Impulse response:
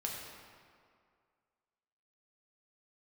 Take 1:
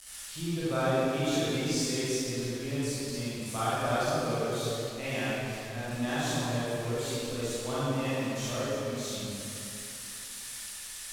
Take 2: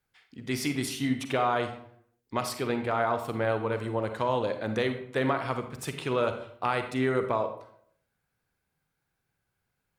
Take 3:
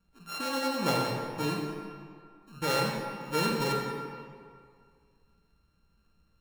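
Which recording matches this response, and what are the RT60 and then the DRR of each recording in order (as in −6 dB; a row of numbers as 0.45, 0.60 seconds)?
3; 2.9, 0.65, 2.2 seconds; −11.5, 7.0, −2.5 decibels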